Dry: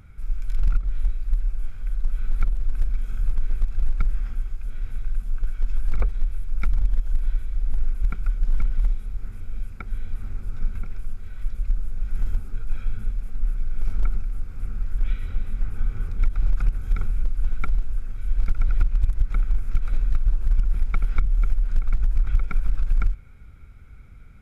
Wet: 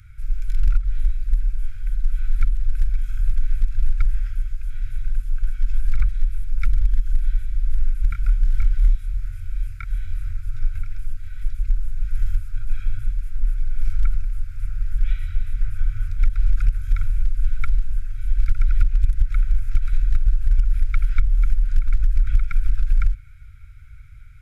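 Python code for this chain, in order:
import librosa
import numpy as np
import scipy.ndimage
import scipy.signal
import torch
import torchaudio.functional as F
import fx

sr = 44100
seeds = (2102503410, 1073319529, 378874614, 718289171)

y = scipy.signal.sosfilt(scipy.signal.ellip(3, 1.0, 40, [120.0, 1500.0], 'bandstop', fs=sr, output='sos'), x)
y = fx.doubler(y, sr, ms=26.0, db=-5.5, at=(8.09, 10.32))
y = F.gain(torch.from_numpy(y), 3.5).numpy()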